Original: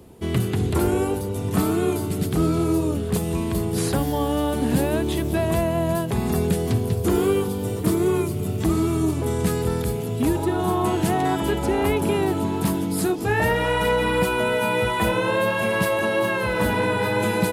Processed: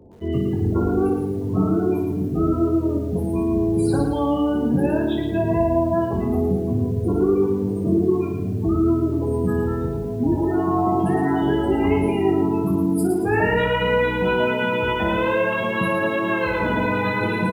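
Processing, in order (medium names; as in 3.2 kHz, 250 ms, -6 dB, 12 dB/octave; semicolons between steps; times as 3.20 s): spectral gate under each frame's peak -20 dB strong; hum notches 50/100/150/200 Hz; early reflections 21 ms -3.5 dB, 57 ms -6.5 dB; bit-crushed delay 112 ms, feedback 35%, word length 8-bit, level -5.5 dB; trim -1.5 dB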